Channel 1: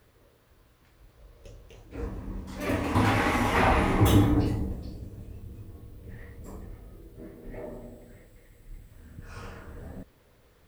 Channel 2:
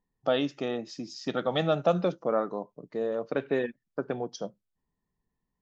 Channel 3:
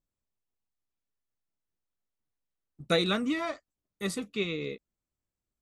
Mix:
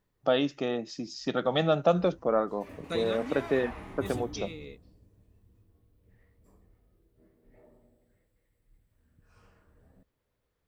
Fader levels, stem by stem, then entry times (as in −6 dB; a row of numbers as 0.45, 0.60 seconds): −19.5, +1.0, −9.5 decibels; 0.00, 0.00, 0.00 seconds